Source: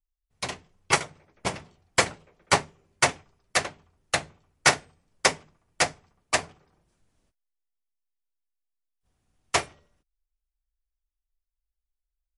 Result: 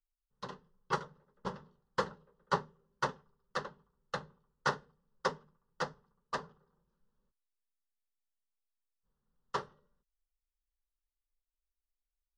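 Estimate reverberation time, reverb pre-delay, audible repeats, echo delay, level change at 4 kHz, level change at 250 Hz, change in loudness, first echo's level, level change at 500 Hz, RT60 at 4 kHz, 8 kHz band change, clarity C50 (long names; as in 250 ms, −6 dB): no reverb audible, no reverb audible, no echo audible, no echo audible, −18.0 dB, −8.5 dB, −13.0 dB, no echo audible, −9.0 dB, no reverb audible, −26.0 dB, no reverb audible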